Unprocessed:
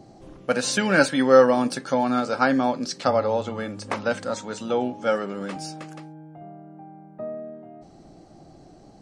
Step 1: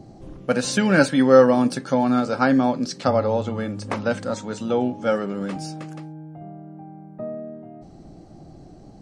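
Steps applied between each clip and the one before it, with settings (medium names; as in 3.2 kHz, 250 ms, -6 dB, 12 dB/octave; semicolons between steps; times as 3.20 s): bass shelf 300 Hz +9.5 dB; trim -1 dB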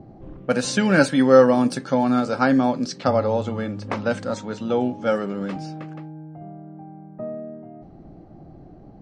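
level-controlled noise filter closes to 1.7 kHz, open at -18 dBFS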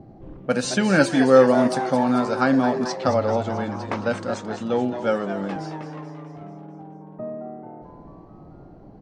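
frequency-shifting echo 219 ms, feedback 55%, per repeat +130 Hz, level -10.5 dB; trim -1 dB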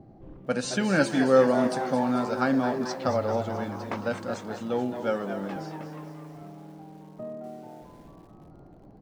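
bit-crushed delay 244 ms, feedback 55%, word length 7-bit, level -14.5 dB; trim -5.5 dB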